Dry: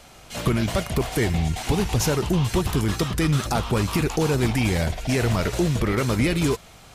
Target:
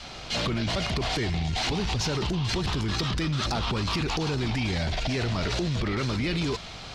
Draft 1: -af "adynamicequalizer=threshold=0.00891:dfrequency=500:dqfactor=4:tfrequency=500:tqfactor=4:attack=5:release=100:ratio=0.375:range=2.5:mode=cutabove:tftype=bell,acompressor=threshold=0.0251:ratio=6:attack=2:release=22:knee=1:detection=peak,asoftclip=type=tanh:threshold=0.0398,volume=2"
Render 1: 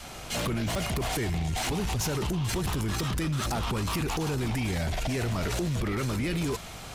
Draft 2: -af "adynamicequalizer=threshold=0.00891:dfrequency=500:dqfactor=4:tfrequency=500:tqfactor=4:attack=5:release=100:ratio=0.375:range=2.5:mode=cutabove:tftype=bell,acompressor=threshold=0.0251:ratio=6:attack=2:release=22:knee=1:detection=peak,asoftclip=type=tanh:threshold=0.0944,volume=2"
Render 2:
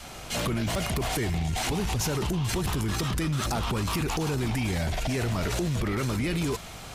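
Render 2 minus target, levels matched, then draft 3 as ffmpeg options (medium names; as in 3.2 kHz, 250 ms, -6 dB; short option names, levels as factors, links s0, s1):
4 kHz band -4.0 dB
-af "adynamicequalizer=threshold=0.00891:dfrequency=500:dqfactor=4:tfrequency=500:tqfactor=4:attack=5:release=100:ratio=0.375:range=2.5:mode=cutabove:tftype=bell,acompressor=threshold=0.0251:ratio=6:attack=2:release=22:knee=1:detection=peak,lowpass=f=4500:t=q:w=2,asoftclip=type=tanh:threshold=0.0944,volume=2"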